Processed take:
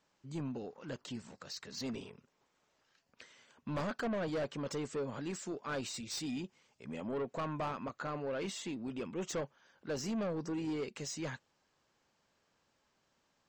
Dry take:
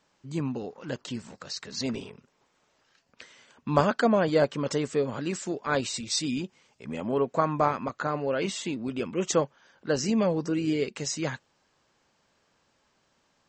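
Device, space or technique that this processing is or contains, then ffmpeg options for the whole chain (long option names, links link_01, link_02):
saturation between pre-emphasis and de-emphasis: -af "highshelf=frequency=4400:gain=7.5,asoftclip=type=tanh:threshold=-25dB,highshelf=frequency=4400:gain=-7.5,volume=-7dB"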